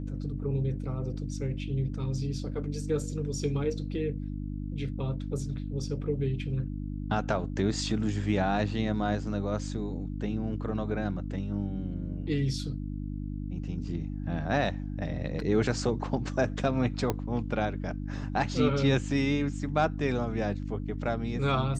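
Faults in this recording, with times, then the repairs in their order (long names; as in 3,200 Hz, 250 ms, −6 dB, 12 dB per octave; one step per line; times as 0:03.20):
mains hum 50 Hz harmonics 6 −35 dBFS
0:17.10: click −14 dBFS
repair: click removal
hum removal 50 Hz, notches 6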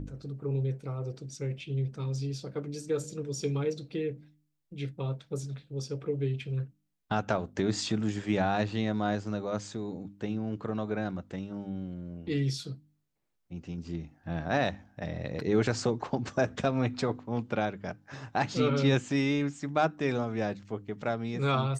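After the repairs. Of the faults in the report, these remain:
none of them is left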